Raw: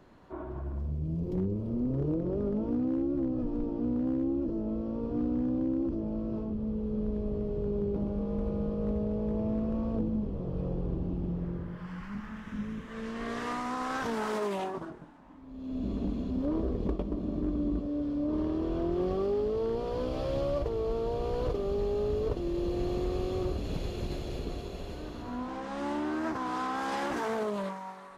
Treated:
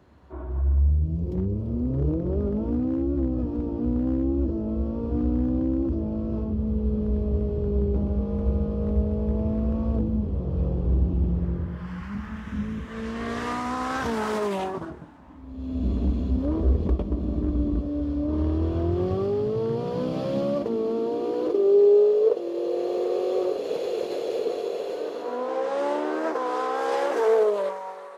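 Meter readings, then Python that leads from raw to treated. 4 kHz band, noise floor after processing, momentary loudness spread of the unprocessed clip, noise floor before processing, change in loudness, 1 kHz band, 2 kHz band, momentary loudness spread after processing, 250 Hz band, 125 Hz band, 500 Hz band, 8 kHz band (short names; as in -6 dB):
+4.0 dB, -37 dBFS, 9 LU, -43 dBFS, +7.0 dB, +5.0 dB, +4.5 dB, 8 LU, +4.5 dB, +9.0 dB, +8.5 dB, n/a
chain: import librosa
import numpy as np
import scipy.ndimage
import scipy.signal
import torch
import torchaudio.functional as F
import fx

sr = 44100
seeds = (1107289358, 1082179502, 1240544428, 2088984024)

y = fx.filter_sweep_highpass(x, sr, from_hz=67.0, to_hz=470.0, start_s=18.3, end_s=22.15, q=6.0)
y = fx.rider(y, sr, range_db=3, speed_s=2.0)
y = F.gain(torch.from_numpy(y), 2.0).numpy()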